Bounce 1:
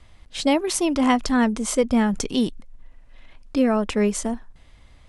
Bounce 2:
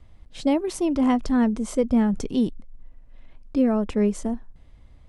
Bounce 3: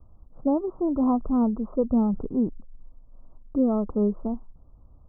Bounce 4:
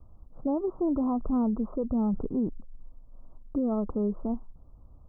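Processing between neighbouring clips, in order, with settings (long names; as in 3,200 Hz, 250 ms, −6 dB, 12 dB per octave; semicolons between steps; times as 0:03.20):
tilt shelving filter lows +6 dB, about 790 Hz; level −5 dB
Butterworth low-pass 1,300 Hz 96 dB per octave; level −2 dB
brickwall limiter −21 dBFS, peak gain reduction 8 dB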